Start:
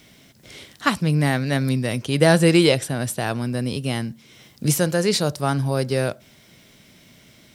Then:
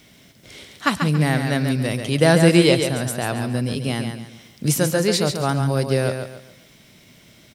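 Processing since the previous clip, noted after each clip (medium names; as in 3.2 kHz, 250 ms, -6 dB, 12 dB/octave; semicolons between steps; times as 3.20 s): feedback delay 139 ms, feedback 33%, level -6.5 dB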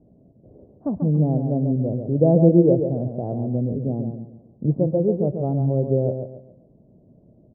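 steep low-pass 660 Hz 36 dB/octave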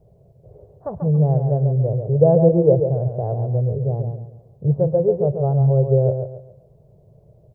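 FFT filter 140 Hz 0 dB, 270 Hz -26 dB, 420 Hz -1 dB, 650 Hz -2 dB, 2.2 kHz +5 dB; trim +6 dB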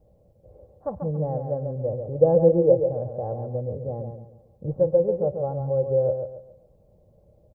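comb 3.7 ms, depth 68%; trim -4.5 dB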